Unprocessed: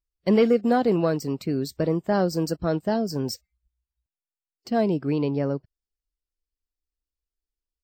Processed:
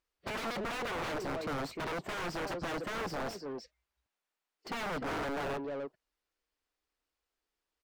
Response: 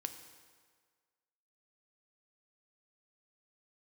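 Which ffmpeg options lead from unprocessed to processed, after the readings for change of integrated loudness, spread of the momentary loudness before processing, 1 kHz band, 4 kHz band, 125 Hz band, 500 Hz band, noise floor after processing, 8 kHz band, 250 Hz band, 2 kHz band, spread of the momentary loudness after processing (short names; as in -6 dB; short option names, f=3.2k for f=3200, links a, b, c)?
-13.0 dB, 9 LU, -6.5 dB, -4.5 dB, -16.5 dB, -14.0 dB, under -85 dBFS, -7.0 dB, -17.5 dB, -0.5 dB, 7 LU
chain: -filter_complex "[0:a]asplit=2[a][b];[b]adelay=300,highpass=300,lowpass=3.4k,asoftclip=type=hard:threshold=-19.5dB,volume=-12dB[c];[a][c]amix=inputs=2:normalize=0,aeval=exprs='(mod(15*val(0)+1,2)-1)/15':c=same,asplit=2[d][e];[e]highpass=f=720:p=1,volume=29dB,asoftclip=type=tanh:threshold=-23.5dB[f];[d][f]amix=inputs=2:normalize=0,lowpass=f=1.5k:p=1,volume=-6dB,volume=-7dB"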